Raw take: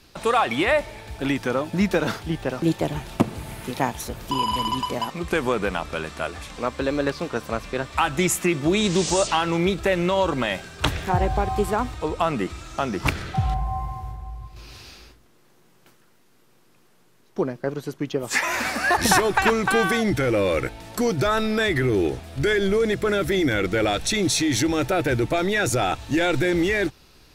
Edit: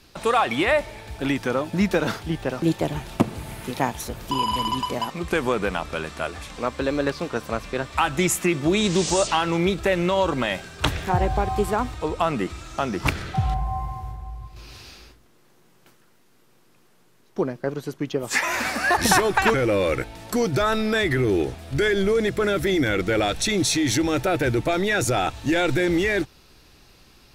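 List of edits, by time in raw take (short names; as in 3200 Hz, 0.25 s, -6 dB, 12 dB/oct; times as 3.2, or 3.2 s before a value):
19.54–20.19 cut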